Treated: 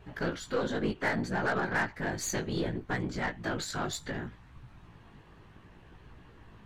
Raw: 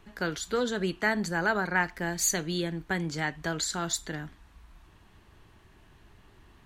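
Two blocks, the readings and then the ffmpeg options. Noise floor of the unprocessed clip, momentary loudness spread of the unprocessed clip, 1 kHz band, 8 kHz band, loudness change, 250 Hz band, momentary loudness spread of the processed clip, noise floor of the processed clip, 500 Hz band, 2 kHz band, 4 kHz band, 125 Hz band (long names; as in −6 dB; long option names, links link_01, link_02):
−58 dBFS, 6 LU, −2.0 dB, −9.0 dB, −3.0 dB, −1.5 dB, 5 LU, −56 dBFS, −1.5 dB, −3.5 dB, −5.5 dB, −1.0 dB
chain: -filter_complex "[0:a]lowpass=frequency=2500:poles=1,afftfilt=real='hypot(re,im)*cos(2*PI*random(0))':imag='hypot(re,im)*sin(2*PI*random(1))':win_size=512:overlap=0.75,asplit=2[link_01][link_02];[link_02]acompressor=threshold=-45dB:ratio=16,volume=1dB[link_03];[link_01][link_03]amix=inputs=2:normalize=0,asoftclip=type=tanh:threshold=-20.5dB,acontrast=51,flanger=delay=16:depth=3.4:speed=0.66,aeval=exprs='0.126*(cos(1*acos(clip(val(0)/0.126,-1,1)))-cos(1*PI/2))+0.00562*(cos(8*acos(clip(val(0)/0.126,-1,1)))-cos(8*PI/2))':channel_layout=same"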